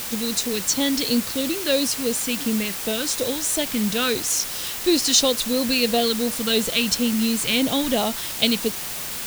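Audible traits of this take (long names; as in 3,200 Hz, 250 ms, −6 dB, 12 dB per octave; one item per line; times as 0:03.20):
phaser sweep stages 2, 2.9 Hz, lowest notch 720–1,600 Hz
a quantiser's noise floor 6 bits, dither triangular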